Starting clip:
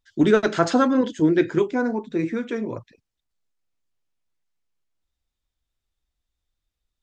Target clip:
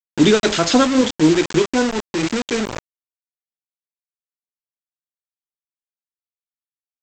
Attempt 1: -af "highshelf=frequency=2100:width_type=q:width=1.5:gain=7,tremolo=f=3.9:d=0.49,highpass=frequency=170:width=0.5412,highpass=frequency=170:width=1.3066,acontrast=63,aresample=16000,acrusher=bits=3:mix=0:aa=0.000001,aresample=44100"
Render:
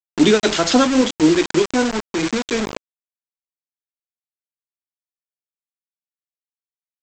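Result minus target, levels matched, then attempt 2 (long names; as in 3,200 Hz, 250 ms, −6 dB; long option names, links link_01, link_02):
125 Hz band −3.5 dB
-af "highshelf=frequency=2100:width_type=q:width=1.5:gain=7,tremolo=f=3.9:d=0.49,acontrast=63,aresample=16000,acrusher=bits=3:mix=0:aa=0.000001,aresample=44100"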